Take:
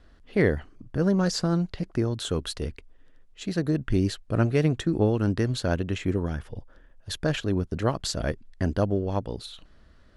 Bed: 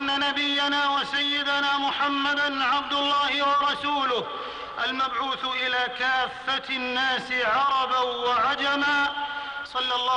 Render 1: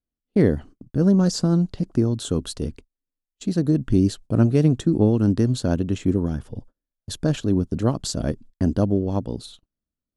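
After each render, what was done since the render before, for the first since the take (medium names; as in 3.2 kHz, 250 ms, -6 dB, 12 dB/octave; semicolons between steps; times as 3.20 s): gate -42 dBFS, range -36 dB; graphic EQ 125/250/2000/8000 Hz +4/+8/-8/+5 dB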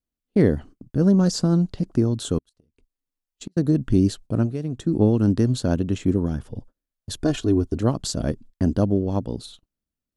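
2.38–3.57 s: inverted gate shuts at -21 dBFS, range -40 dB; 4.24–5.02 s: dip -11.5 dB, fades 0.34 s; 7.18–7.79 s: comb 2.8 ms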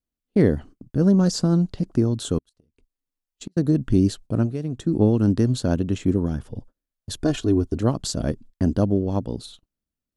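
no audible change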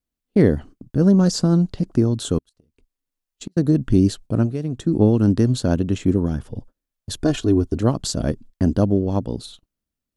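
trim +2.5 dB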